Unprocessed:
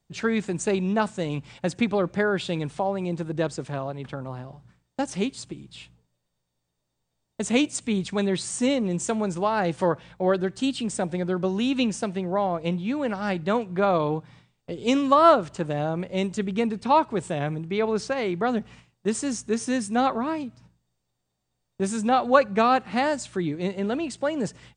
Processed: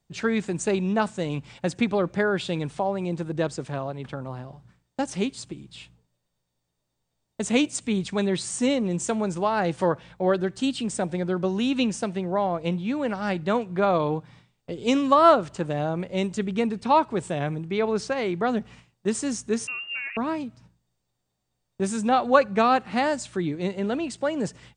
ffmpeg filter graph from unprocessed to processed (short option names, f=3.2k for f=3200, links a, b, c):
-filter_complex "[0:a]asettb=1/sr,asplit=3[a][b][c];[a]atrim=end=19.674[d];[b]atrim=start=19.67:end=20.17,asetpts=PTS-STARTPTS,afade=t=in:d=0.004:c=qsin,afade=t=out:st=0.496:d=0.004:c=qsin,acompressor=threshold=-29dB:ratio=8:attack=3.2:release=140:knee=1:detection=peak,lowpass=f=2.6k:t=q:w=0.5098,lowpass=f=2.6k:t=q:w=0.6013,lowpass=f=2.6k:t=q:w=0.9,lowpass=f=2.6k:t=q:w=2.563,afreqshift=-3000[e];[c]atrim=start=20.166[f];[d][e]acrossfade=d=0.004:c1=hsin:c2=qsin[g];[g][f]acrossfade=d=0.004:c1=qsin:c2=hsin"